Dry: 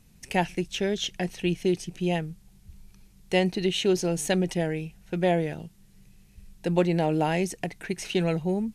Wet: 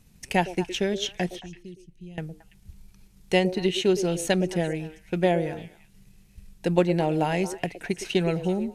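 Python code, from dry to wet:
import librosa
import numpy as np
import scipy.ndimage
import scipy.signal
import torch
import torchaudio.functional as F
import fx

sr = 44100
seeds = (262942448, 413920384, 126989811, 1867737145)

y = fx.transient(x, sr, attack_db=3, sustain_db=-2)
y = fx.tone_stack(y, sr, knobs='10-0-1', at=(1.39, 2.18))
y = fx.echo_stepped(y, sr, ms=112, hz=420.0, octaves=1.4, feedback_pct=70, wet_db=-8.5)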